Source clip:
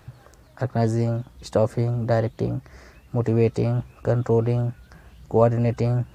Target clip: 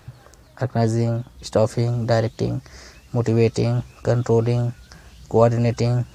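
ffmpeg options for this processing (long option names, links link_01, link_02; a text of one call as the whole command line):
ffmpeg -i in.wav -af "asetnsamples=nb_out_samples=441:pad=0,asendcmd='1.57 equalizer g 11.5',equalizer=frequency=5700:width=0.76:gain=4,volume=2dB" out.wav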